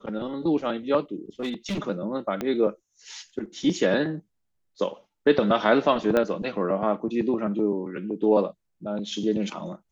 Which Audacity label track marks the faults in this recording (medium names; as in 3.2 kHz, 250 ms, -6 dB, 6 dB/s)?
1.400000	1.800000	clipped -24.5 dBFS
2.410000	2.410000	pop -15 dBFS
6.170000	6.170000	pop -11 dBFS